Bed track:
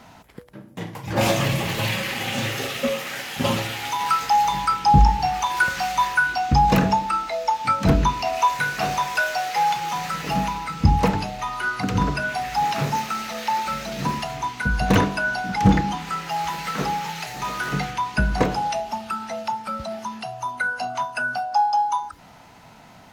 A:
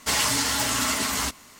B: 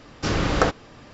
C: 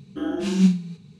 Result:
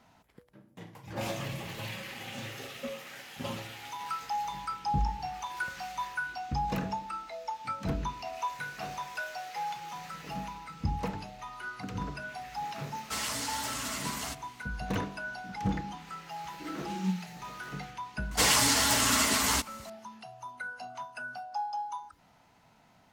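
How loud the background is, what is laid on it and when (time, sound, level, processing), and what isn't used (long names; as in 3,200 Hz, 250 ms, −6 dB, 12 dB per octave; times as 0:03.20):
bed track −15 dB
0:13.04: mix in A −11.5 dB
0:16.44: mix in C −14 dB
0:18.31: mix in A −1 dB
not used: B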